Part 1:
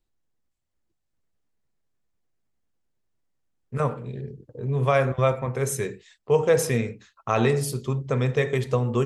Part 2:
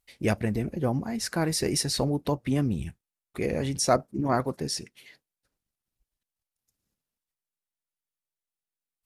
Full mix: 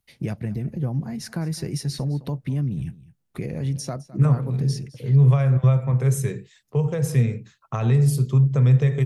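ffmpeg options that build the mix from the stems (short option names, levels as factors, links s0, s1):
-filter_complex "[0:a]highshelf=f=8200:g=5,adelay=450,volume=0.75[s0];[1:a]bandreject=f=7700:w=7.8,acompressor=threshold=0.0178:ratio=2.5,volume=1,asplit=2[s1][s2];[s2]volume=0.112,aecho=0:1:210:1[s3];[s0][s1][s3]amix=inputs=3:normalize=0,acrossover=split=150[s4][s5];[s5]acompressor=threshold=0.0447:ratio=6[s6];[s4][s6]amix=inputs=2:normalize=0,equalizer=f=140:w=1.4:g=14.5"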